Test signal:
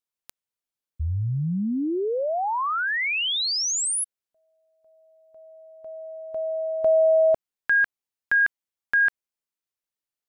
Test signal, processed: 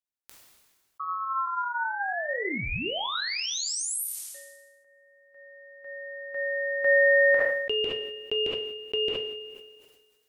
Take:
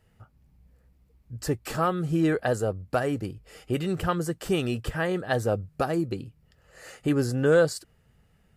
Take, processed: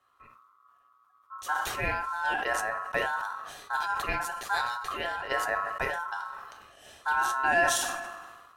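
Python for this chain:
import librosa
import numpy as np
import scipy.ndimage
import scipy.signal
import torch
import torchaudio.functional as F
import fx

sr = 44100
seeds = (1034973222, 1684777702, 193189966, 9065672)

y = fx.rev_double_slope(x, sr, seeds[0], early_s=0.34, late_s=1.7, knee_db=-26, drr_db=5.0)
y = y * np.sin(2.0 * np.pi * 1200.0 * np.arange(len(y)) / sr)
y = fx.sustainer(y, sr, db_per_s=38.0)
y = F.gain(torch.from_numpy(y), -4.0).numpy()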